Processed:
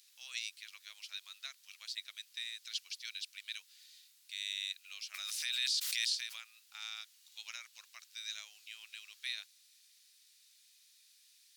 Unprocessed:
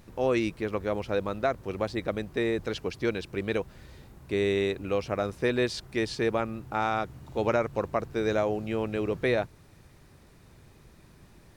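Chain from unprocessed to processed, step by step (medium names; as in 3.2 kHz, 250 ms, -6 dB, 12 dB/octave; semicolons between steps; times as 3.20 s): ladder high-pass 3 kHz, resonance 25%; 5.14–6.41 s: swell ahead of each attack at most 20 dB/s; trim +7.5 dB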